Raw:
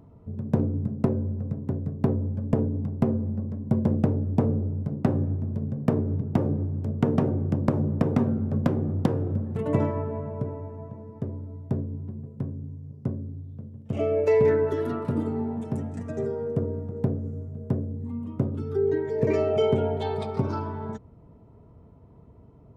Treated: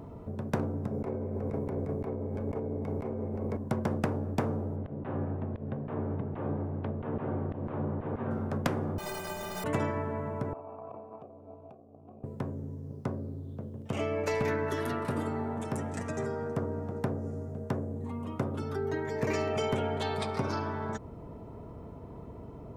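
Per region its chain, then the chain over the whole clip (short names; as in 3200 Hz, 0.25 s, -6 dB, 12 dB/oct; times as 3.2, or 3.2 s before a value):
0.91–3.57 negative-ratio compressor -32 dBFS + small resonant body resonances 440/2200 Hz, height 14 dB, ringing for 25 ms
4.76–8.31 steep low-pass 3400 Hz + auto swell 0.154 s
8.98–9.64 infinite clipping + bell 700 Hz +13 dB 0.95 oct + metallic resonator 180 Hz, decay 0.54 s, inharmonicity 0.03
10.53–12.24 transient shaper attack -11 dB, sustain +11 dB + negative-ratio compressor -36 dBFS + vowel filter a
whole clip: dynamic EQ 3300 Hz, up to -5 dB, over -53 dBFS, Q 0.96; spectral compressor 2:1; gain -3 dB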